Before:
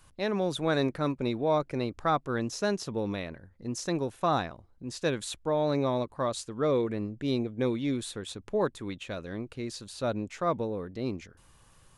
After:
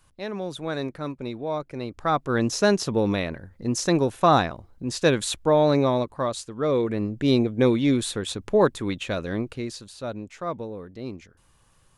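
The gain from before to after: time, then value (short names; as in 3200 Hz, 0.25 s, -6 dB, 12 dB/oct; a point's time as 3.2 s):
1.74 s -2.5 dB
2.46 s +9 dB
5.55 s +9 dB
6.54 s +1.5 dB
7.23 s +9 dB
9.4 s +9 dB
9.99 s -2 dB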